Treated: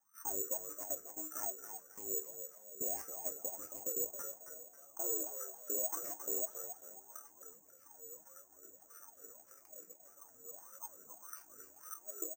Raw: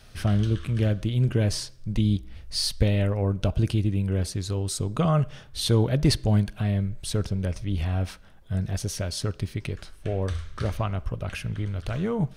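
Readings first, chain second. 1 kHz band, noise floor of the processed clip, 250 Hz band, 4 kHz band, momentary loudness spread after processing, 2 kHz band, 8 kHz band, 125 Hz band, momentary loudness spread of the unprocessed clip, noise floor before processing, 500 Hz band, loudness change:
-15.0 dB, -64 dBFS, -29.0 dB, under -35 dB, 19 LU, -23.0 dB, -2.0 dB, under -40 dB, 9 LU, -49 dBFS, -16.5 dB, -13.5 dB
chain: chunks repeated in reverse 609 ms, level -7 dB; fifteen-band graphic EQ 630 Hz -4 dB, 1.6 kHz +9 dB, 4 kHz -10 dB; level held to a coarse grid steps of 22 dB; ring modulator 180 Hz; chord resonator D#2 sus4, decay 0.22 s; wah-wah 1.7 Hz 440–1300 Hz, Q 18; peak limiter -54 dBFS, peak gain reduction 10.5 dB; on a send: frequency-shifting echo 271 ms, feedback 37%, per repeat +72 Hz, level -9 dB; on the sum: careless resampling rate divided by 6×, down filtered, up zero stuff; trim +16.5 dB

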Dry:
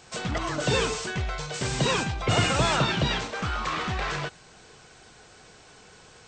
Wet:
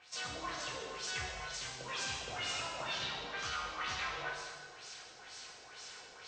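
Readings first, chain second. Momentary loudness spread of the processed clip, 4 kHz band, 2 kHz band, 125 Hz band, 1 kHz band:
12 LU, -9.5 dB, -10.0 dB, -24.0 dB, -12.0 dB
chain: pre-emphasis filter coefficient 0.97; reverse; compression 5:1, threshold -49 dBFS, peak gain reduction 16 dB; reverse; LFO low-pass sine 2.1 Hz 510–6000 Hz; treble shelf 2.2 kHz -10 dB; gated-style reverb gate 490 ms falling, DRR -2.5 dB; trim +11 dB

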